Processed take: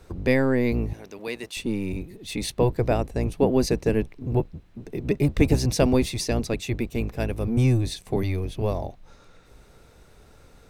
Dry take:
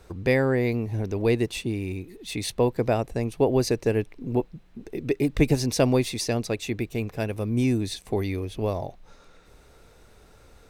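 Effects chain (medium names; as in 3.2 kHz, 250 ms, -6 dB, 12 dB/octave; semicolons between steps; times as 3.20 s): octave divider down 1 oct, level 0 dB; 0.93–1.57 s: high-pass 1.5 kHz 6 dB/octave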